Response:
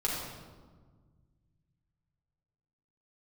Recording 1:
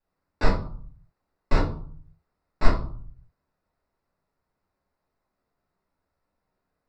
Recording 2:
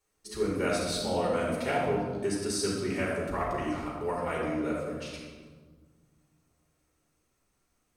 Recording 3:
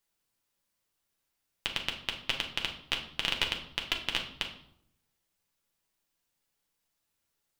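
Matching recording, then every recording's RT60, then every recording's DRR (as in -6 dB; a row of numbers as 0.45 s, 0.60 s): 2; 0.50 s, 1.5 s, 0.75 s; -6.5 dB, -5.5 dB, 1.5 dB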